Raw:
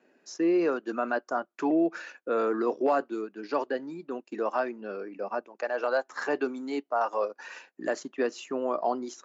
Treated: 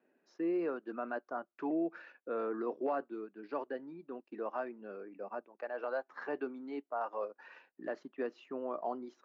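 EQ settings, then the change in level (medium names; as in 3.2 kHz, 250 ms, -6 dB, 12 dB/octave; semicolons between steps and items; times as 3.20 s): distance through air 320 m; -8.5 dB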